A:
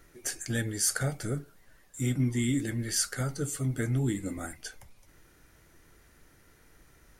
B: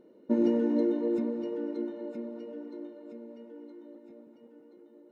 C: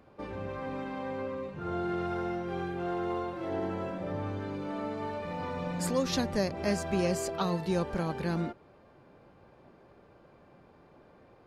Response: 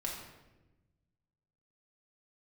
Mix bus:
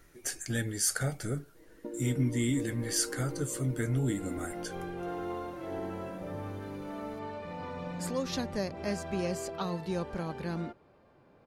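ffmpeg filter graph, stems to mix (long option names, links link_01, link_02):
-filter_complex "[0:a]volume=-1.5dB,asplit=2[link_01][link_02];[1:a]aecho=1:1:6.3:0.94,acompressor=threshold=-33dB:ratio=6,adelay=1550,volume=-5.5dB[link_03];[2:a]adelay=2200,volume=-4dB[link_04];[link_02]apad=whole_len=602691[link_05];[link_04][link_05]sidechaincompress=threshold=-43dB:ratio=8:attack=16:release=142[link_06];[link_01][link_03][link_06]amix=inputs=3:normalize=0"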